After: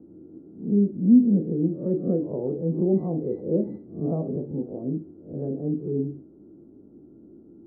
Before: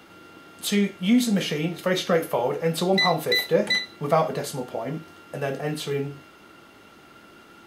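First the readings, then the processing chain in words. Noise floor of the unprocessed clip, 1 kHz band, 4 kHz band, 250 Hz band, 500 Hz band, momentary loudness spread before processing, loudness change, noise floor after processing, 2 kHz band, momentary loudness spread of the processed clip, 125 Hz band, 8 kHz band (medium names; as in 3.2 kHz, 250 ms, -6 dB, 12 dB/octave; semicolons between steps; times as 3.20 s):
-51 dBFS, -19.5 dB, under -40 dB, +4.0 dB, -3.5 dB, 11 LU, -1.0 dB, -51 dBFS, under -40 dB, 15 LU, +2.0 dB, under -40 dB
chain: reverse spectral sustain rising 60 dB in 0.40 s; four-pole ladder low-pass 380 Hz, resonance 45%; trim +8 dB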